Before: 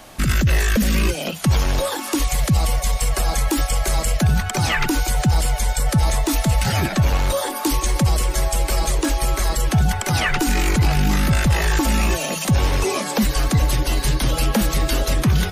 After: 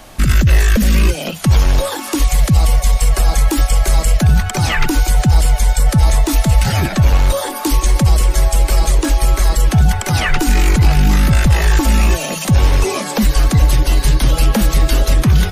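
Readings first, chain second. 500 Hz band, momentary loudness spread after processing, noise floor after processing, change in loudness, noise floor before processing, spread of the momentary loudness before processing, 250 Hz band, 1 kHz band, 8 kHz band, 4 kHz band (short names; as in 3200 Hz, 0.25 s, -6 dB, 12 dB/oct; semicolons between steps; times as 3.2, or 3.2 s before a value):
+2.5 dB, 4 LU, -24 dBFS, +5.5 dB, -28 dBFS, 3 LU, +3.5 dB, +2.5 dB, +2.5 dB, +2.5 dB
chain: low shelf 76 Hz +8 dB; gain +2.5 dB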